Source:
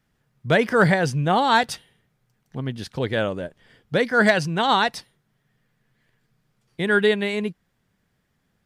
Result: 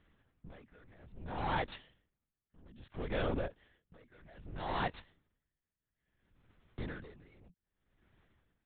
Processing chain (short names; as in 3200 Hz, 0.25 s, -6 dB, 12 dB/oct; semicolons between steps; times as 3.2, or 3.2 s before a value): switching dead time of 0.062 ms; dynamic EQ 180 Hz, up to +6 dB, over -36 dBFS, Q 1.8; compressor 6:1, threshold -28 dBFS, peak gain reduction 16.5 dB; overloaded stage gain 31 dB; LPC vocoder at 8 kHz whisper; dB-linear tremolo 0.61 Hz, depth 29 dB; gain +2 dB